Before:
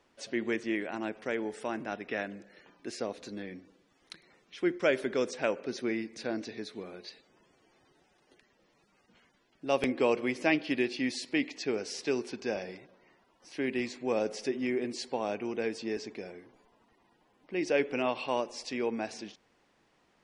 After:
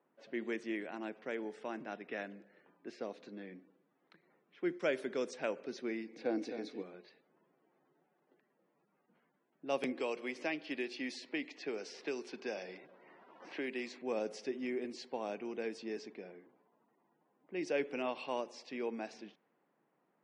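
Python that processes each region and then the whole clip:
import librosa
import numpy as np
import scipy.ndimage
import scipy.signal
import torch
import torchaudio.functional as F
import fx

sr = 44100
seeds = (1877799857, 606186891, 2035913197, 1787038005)

y = fx.chain(x, sr, fx.small_body(hz=(300.0, 490.0, 750.0, 2200.0), ring_ms=40, db=10),
    fx.echo_single(ms=259, db=-9.5), at=(6.08, 6.82))
y = fx.chain(y, sr, fx.highpass(hz=330.0, slope=6),
    fx.band_squash(depth_pct=70), at=(10.0, 14.02))
y = scipy.signal.sosfilt(scipy.signal.cheby1(4, 1.0, 150.0, 'highpass', fs=sr, output='sos'), y)
y = fx.env_lowpass(y, sr, base_hz=1400.0, full_db=-28.0)
y = y * 10.0 ** (-6.5 / 20.0)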